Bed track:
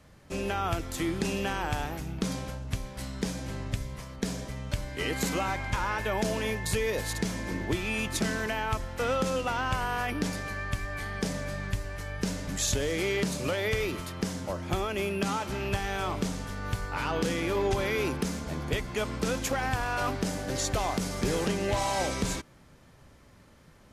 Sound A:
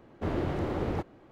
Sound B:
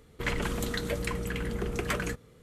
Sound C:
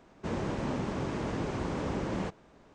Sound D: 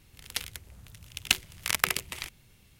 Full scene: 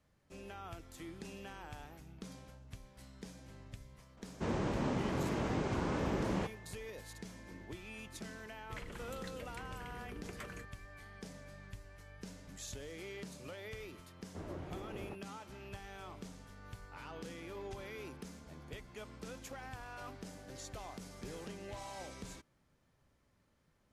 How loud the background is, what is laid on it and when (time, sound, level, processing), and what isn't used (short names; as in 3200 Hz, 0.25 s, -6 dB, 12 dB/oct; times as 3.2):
bed track -18 dB
4.17 add C -2 dB
8.5 add B -17 dB
14.13 add A -15.5 dB
not used: D